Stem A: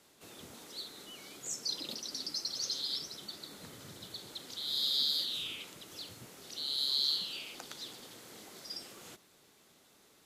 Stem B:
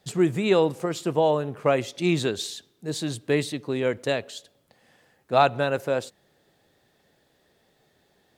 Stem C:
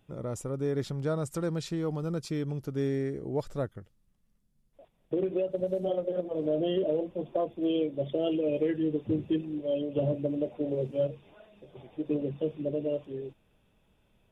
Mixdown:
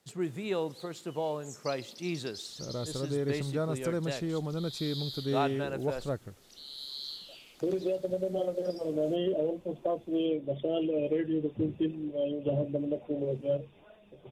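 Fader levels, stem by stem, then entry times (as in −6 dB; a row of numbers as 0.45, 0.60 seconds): −9.5, −12.0, −1.5 decibels; 0.00, 0.00, 2.50 seconds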